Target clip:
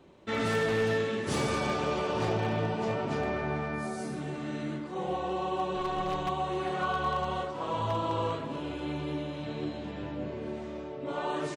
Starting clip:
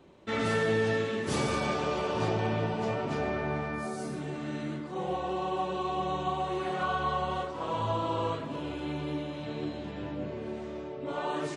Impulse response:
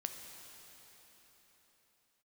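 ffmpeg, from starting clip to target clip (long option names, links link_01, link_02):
-filter_complex "[0:a]asplit=3[link_01][link_02][link_03];[link_01]afade=type=out:start_time=5.74:duration=0.02[link_04];[link_02]aeval=exprs='0.1*(cos(1*acos(clip(val(0)/0.1,-1,1)))-cos(1*PI/2))+0.0282*(cos(2*acos(clip(val(0)/0.1,-1,1)))-cos(2*PI/2))':channel_layout=same,afade=type=in:start_time=5.74:duration=0.02,afade=type=out:start_time=6.27:duration=0.02[link_05];[link_03]afade=type=in:start_time=6.27:duration=0.02[link_06];[link_04][link_05][link_06]amix=inputs=3:normalize=0,aeval=exprs='0.0841*(abs(mod(val(0)/0.0841+3,4)-2)-1)':channel_layout=same,asplit=2[link_07][link_08];[link_08]adelay=262.4,volume=-15dB,highshelf=frequency=4000:gain=-5.9[link_09];[link_07][link_09]amix=inputs=2:normalize=0"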